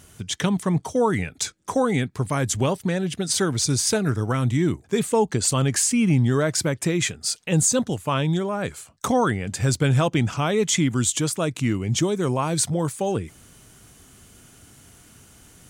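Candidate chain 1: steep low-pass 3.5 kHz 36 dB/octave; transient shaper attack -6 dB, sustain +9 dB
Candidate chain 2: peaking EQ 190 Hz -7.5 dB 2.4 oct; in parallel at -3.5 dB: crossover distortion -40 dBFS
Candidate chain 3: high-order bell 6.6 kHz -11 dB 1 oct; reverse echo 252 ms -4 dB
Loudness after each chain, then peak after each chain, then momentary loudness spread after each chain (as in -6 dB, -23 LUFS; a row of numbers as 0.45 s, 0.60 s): -24.0 LUFS, -21.5 LUFS, -22.0 LUFS; -8.0 dBFS, -5.0 dBFS, -6.5 dBFS; 6 LU, 8 LU, 6 LU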